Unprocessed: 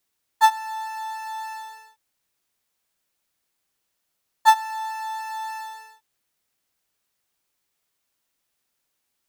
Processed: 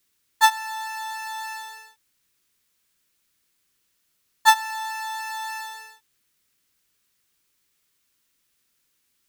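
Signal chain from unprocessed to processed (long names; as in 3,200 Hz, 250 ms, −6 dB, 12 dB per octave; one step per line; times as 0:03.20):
parametric band 720 Hz −11 dB 0.94 octaves
level +6 dB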